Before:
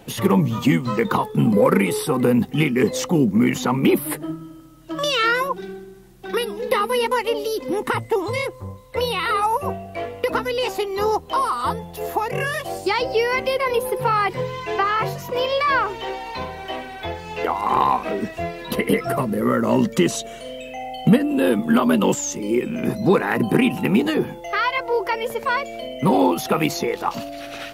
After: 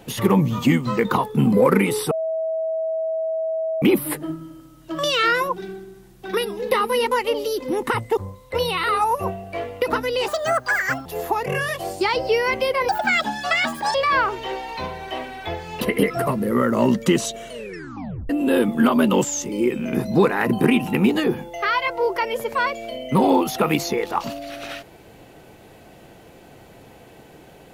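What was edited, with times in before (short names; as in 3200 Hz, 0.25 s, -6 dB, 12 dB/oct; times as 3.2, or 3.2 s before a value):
2.11–3.82 bleep 645 Hz -21 dBFS
8.17–8.59 cut
10.7–11.91 speed 156%
13.74–15.52 speed 168%
17.38–18.71 cut
20.41 tape stop 0.79 s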